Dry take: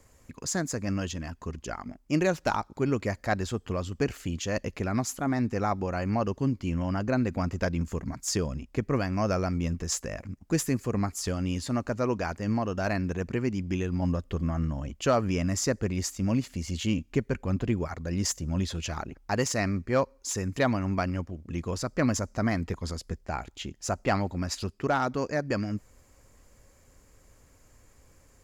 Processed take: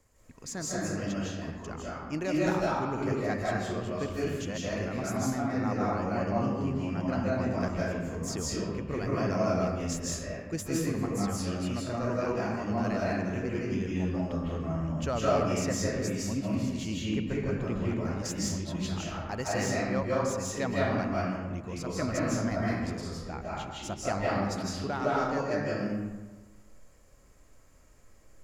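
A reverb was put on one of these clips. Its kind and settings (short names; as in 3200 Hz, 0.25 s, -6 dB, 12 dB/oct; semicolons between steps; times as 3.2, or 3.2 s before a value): digital reverb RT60 1.3 s, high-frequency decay 0.6×, pre-delay 0.12 s, DRR -6.5 dB; gain -8.5 dB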